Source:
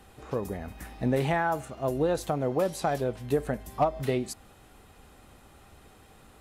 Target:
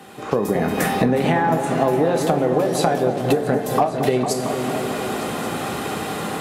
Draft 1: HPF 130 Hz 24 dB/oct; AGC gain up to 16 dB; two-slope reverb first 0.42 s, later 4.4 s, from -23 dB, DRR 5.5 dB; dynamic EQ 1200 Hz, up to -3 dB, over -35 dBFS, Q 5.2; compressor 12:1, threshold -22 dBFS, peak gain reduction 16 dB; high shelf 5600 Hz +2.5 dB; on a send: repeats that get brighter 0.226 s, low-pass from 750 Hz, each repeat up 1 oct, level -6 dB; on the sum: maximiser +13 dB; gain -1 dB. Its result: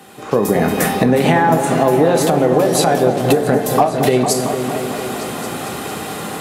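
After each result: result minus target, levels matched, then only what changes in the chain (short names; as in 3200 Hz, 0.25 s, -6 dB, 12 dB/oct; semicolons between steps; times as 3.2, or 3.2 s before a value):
compressor: peak gain reduction -5.5 dB; 8000 Hz band +3.0 dB
change: compressor 12:1, threshold -28 dBFS, peak gain reduction 21.5 dB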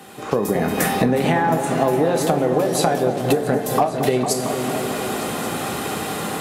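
8000 Hz band +4.0 dB
change: high shelf 5600 Hz -3.5 dB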